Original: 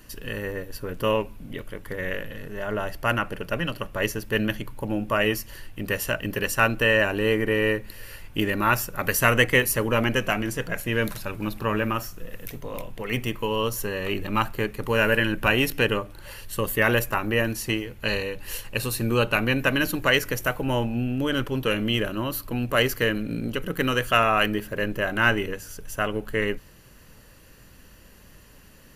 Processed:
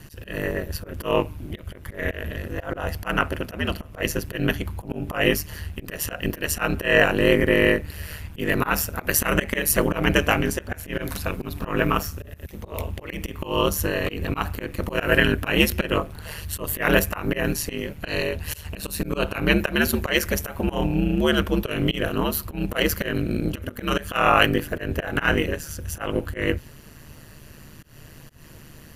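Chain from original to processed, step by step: hum 60 Hz, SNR 29 dB; ring modulator 76 Hz; slow attack 155 ms; trim +7.5 dB

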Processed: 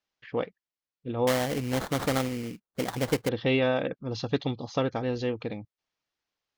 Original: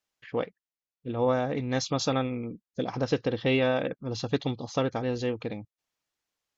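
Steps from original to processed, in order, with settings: low-pass 5.8 kHz 24 dB/octave; 1.27–3.29 s: sample-rate reducer 2.6 kHz, jitter 20%

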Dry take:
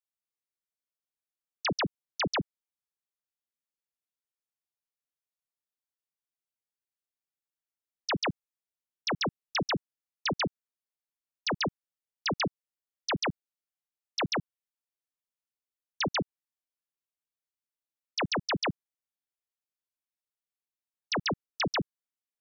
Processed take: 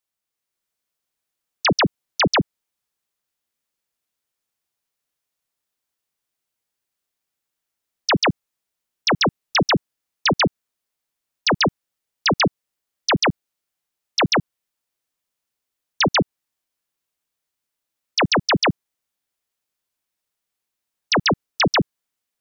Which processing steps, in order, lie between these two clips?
level rider gain up to 3.5 dB; trim +8.5 dB

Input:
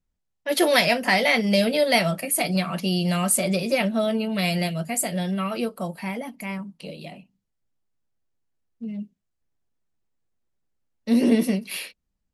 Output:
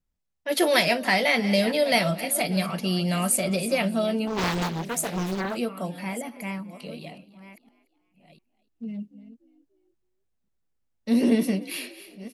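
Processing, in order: chunks repeated in reverse 699 ms, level -14 dB; frequency-shifting echo 293 ms, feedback 38%, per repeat +54 Hz, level -20 dB; 4.27–5.55 s: loudspeaker Doppler distortion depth 0.98 ms; trim -2 dB

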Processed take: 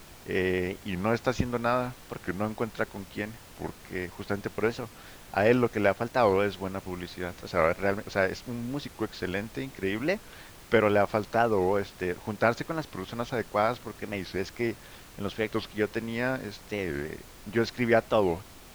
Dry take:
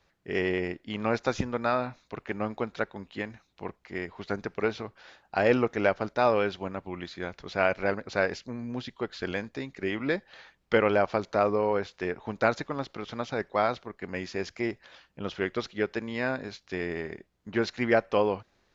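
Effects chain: bass shelf 140 Hz +5.5 dB; added noise pink -49 dBFS; warped record 45 rpm, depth 250 cents

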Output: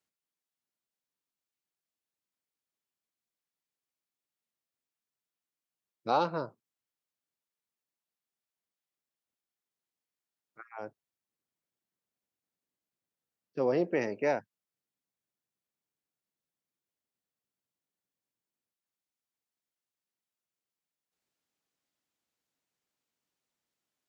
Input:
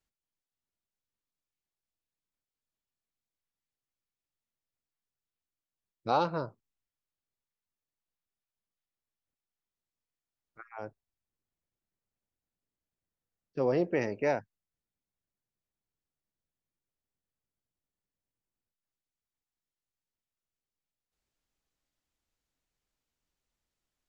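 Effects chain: high-pass 160 Hz 12 dB/octave

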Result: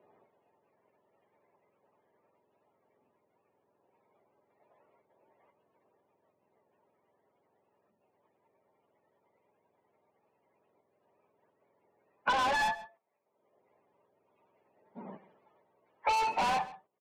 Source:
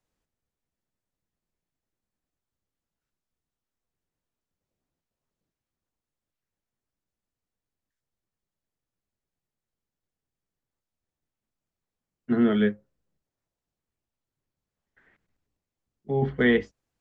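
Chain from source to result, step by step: spectrum inverted on a logarithmic axis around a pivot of 600 Hz; cabinet simulation 390–2100 Hz, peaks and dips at 410 Hz +8 dB, 600 Hz +8 dB, 920 Hz +8 dB, 1.5 kHz -9 dB; in parallel at +1 dB: peak limiter -21.5 dBFS, peak gain reduction 10 dB; on the sum: gate -54 dBFS, range -14 dB; saturation -27 dBFS, distortion -6 dB; echo from a far wall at 23 m, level -21 dB; three bands compressed up and down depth 100%

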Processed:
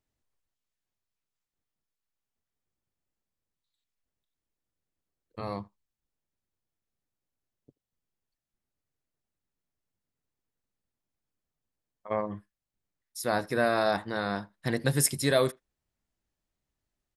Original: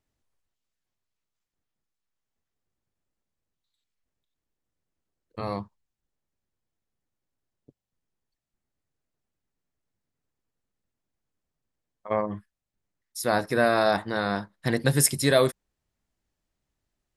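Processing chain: speakerphone echo 80 ms, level -26 dB; trim -4 dB

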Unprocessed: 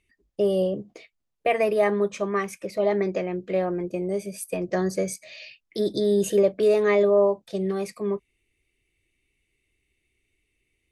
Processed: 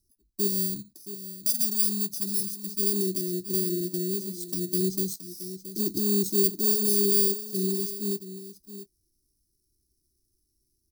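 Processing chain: bit-reversed sample order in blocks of 32 samples; Chebyshev band-stop 380–3900 Hz, order 5; 0.47–2.79 s: peaking EQ 460 Hz -14 dB 1.2 oct; delay 672 ms -12.5 dB

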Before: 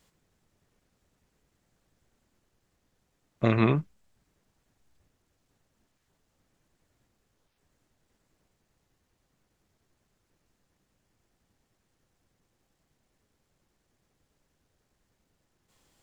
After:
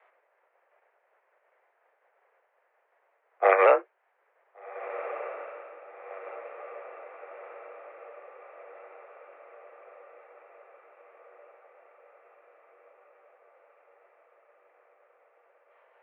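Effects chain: sawtooth pitch modulation -3 st, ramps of 731 ms; in parallel at -10 dB: integer overflow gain 11 dB; on the sum: echo that smears into a reverb 1521 ms, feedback 63%, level -14 dB; mistuned SSB +190 Hz 320–2100 Hz; trim +8.5 dB

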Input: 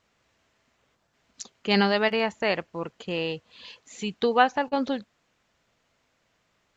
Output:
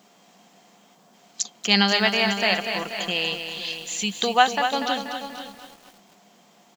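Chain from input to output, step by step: tilt EQ +4.5 dB/octave; in parallel at -1 dB: compression, threshold -32 dBFS, peak gain reduction 18 dB; on the sum: band noise 160–1100 Hz -60 dBFS; small resonant body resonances 200/710/3200 Hz, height 12 dB, ringing for 70 ms; on a send: delay 507 ms -13 dB; on the sum: bit-crushed delay 241 ms, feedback 55%, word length 7-bit, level -7.5 dB; trim -1.5 dB

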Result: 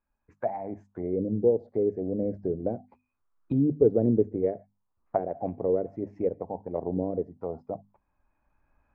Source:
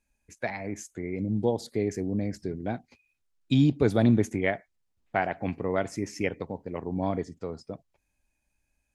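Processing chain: recorder AGC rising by 8.6 dB/s; hum notches 50/100/150/200/250 Hz; touch-sensitive low-pass 460–1200 Hz down, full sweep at -22 dBFS; trim -5.5 dB

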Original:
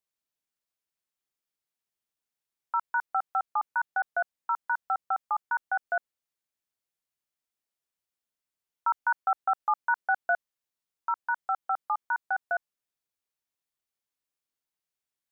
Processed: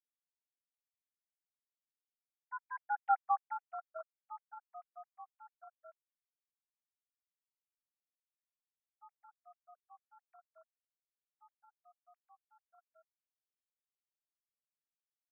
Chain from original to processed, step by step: formants replaced by sine waves; Doppler pass-by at 3.17 s, 27 m/s, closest 3.3 m; trim -1 dB

